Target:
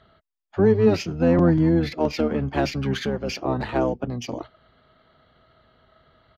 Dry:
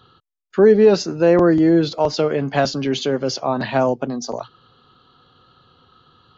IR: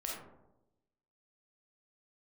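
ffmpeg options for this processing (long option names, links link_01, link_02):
-filter_complex "[0:a]asplit=2[link_01][link_02];[link_02]asetrate=22050,aresample=44100,atempo=2,volume=0dB[link_03];[link_01][link_03]amix=inputs=2:normalize=0,adynamicsmooth=sensitivity=3.5:basefreq=5900,aresample=32000,aresample=44100,volume=-7dB"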